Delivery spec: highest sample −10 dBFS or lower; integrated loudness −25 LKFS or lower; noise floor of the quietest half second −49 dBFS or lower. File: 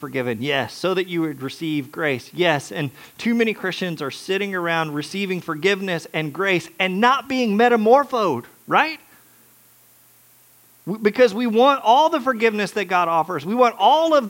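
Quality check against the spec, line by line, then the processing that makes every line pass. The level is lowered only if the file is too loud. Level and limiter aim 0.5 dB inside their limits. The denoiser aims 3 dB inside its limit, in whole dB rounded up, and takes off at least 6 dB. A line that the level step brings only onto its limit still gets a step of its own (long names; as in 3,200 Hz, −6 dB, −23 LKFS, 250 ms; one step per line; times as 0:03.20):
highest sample −2.0 dBFS: out of spec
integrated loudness −20.0 LKFS: out of spec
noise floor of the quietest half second −53 dBFS: in spec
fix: level −5.5 dB
brickwall limiter −10.5 dBFS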